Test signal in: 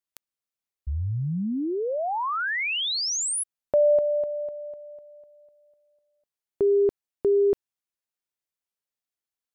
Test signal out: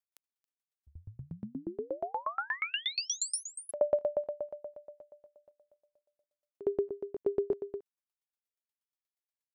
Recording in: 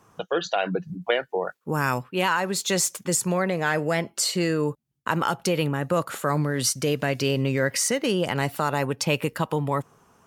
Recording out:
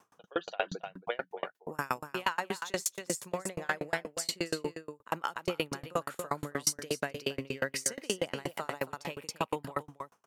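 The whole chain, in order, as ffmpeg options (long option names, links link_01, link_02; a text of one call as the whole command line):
ffmpeg -i in.wav -af "highpass=frequency=390:poles=1,aecho=1:1:275:0.355,aeval=exprs='val(0)*pow(10,-34*if(lt(mod(8.4*n/s,1),2*abs(8.4)/1000),1-mod(8.4*n/s,1)/(2*abs(8.4)/1000),(mod(8.4*n/s,1)-2*abs(8.4)/1000)/(1-2*abs(8.4)/1000))/20)':channel_layout=same" out.wav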